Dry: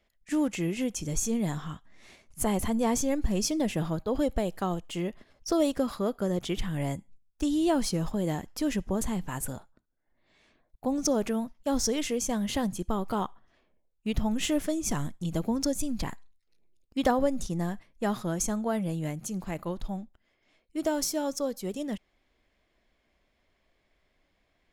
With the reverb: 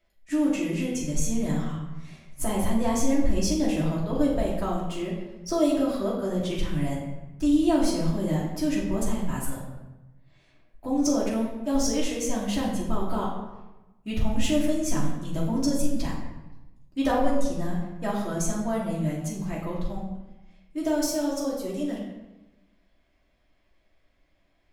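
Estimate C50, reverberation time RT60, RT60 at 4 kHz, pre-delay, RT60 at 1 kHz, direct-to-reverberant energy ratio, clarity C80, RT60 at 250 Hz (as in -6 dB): 2.5 dB, 1.0 s, 0.75 s, 3 ms, 1.0 s, -6.0 dB, 5.0 dB, 1.2 s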